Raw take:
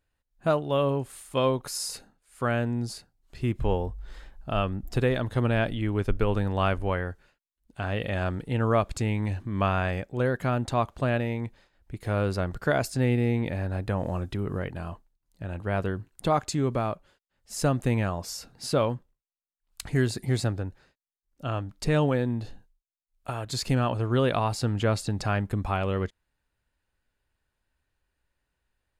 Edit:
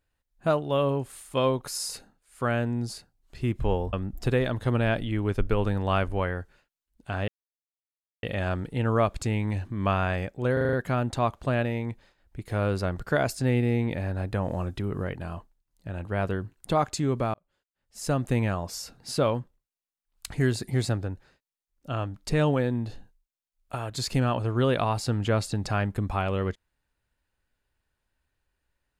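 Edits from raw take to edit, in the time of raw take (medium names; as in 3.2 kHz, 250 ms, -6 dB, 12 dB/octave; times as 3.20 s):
3.93–4.63 s: delete
7.98 s: insert silence 0.95 s
10.28 s: stutter 0.04 s, 6 plays
16.89–17.87 s: fade in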